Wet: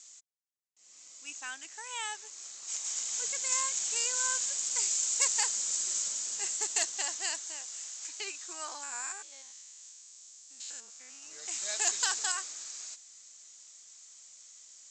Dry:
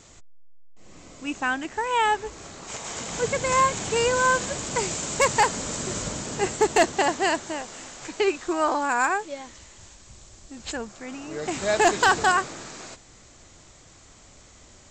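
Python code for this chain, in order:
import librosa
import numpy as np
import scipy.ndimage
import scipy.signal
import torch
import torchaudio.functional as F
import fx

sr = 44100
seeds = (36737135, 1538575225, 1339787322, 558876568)

y = fx.spec_steps(x, sr, hold_ms=100, at=(8.83, 11.23))
y = fx.bandpass_q(y, sr, hz=6600.0, q=1.9)
y = y * 10.0 ** (3.0 / 20.0)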